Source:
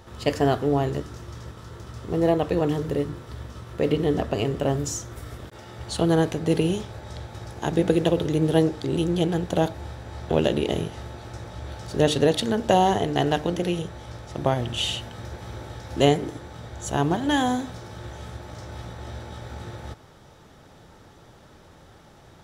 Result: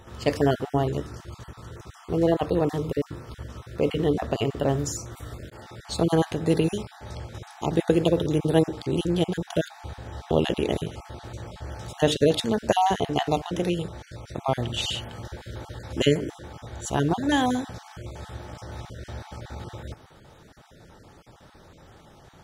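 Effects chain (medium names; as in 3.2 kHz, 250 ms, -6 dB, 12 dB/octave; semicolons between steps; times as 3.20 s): random holes in the spectrogram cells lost 22%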